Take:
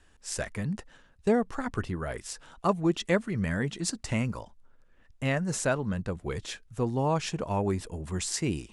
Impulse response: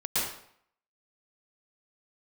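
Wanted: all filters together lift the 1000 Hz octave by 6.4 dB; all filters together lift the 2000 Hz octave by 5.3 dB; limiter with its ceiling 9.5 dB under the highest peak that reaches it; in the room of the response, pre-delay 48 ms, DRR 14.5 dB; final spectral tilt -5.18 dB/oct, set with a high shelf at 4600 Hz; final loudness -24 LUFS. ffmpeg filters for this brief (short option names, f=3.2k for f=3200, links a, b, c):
-filter_complex "[0:a]equalizer=f=1k:t=o:g=7,equalizer=f=2k:t=o:g=5,highshelf=f=4.6k:g=-4.5,alimiter=limit=-18.5dB:level=0:latency=1,asplit=2[a][b];[1:a]atrim=start_sample=2205,adelay=48[c];[b][c]afir=irnorm=-1:irlink=0,volume=-24dB[d];[a][d]amix=inputs=2:normalize=0,volume=7dB"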